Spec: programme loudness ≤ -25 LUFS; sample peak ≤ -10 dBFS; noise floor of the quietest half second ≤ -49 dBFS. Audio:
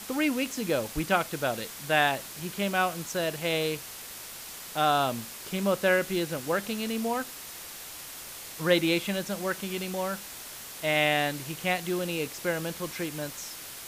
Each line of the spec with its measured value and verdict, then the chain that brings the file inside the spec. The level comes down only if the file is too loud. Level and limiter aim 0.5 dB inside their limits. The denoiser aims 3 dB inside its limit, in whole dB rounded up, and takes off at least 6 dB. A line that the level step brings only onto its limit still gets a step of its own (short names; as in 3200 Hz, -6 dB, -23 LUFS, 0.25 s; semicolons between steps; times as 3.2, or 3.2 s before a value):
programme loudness -29.5 LUFS: OK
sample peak -9.0 dBFS: fail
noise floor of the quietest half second -42 dBFS: fail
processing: denoiser 10 dB, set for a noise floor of -42 dBFS; limiter -10.5 dBFS